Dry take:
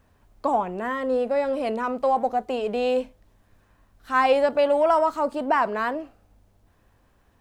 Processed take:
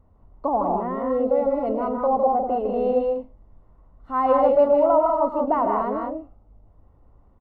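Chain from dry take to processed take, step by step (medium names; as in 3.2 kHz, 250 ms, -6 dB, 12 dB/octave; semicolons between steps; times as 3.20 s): Savitzky-Golay filter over 65 samples; bass shelf 74 Hz +9.5 dB; on a send: loudspeakers at several distances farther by 38 m -12 dB, 54 m -4 dB, 67 m -5 dB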